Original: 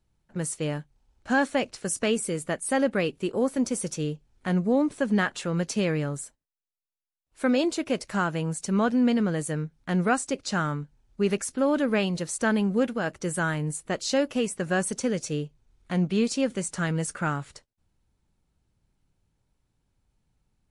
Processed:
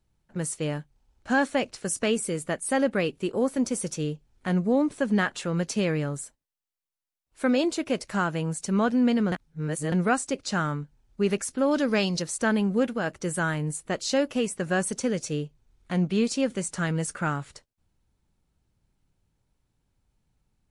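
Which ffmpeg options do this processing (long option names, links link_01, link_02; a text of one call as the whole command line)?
ffmpeg -i in.wav -filter_complex "[0:a]asettb=1/sr,asplit=3[link_01][link_02][link_03];[link_01]atrim=end=11.714[link_04];[link_02]atrim=start=11.71:end=12.22,asetpts=PTS-STARTPTS,afade=type=in:duration=0.004:curve=qsin,afade=type=out:start_time=0.506:duration=0.004:curve=qsin,equalizer=frequency=5300:width=2:gain=14.5[link_05];[link_03]atrim=start=12.216[link_06];[link_04][link_05]acrossfade=duration=0.004:curve1=hsin:curve2=qsin[link_07];[link_07][link_06]acrossfade=duration=0.004:curve1=qsin:curve2=hsin,asplit=3[link_08][link_09][link_10];[link_08]atrim=end=9.322[link_11];[link_09]atrim=start=9.318:end=9.922,asetpts=PTS-STARTPTS,areverse[link_12];[link_10]atrim=start=9.918[link_13];[link_11][link_12]acrossfade=duration=0.004:curve1=hsin:curve2=hsin[link_14];[link_14][link_13]acrossfade=duration=0.004:curve1=hsin:curve2=hsin" out.wav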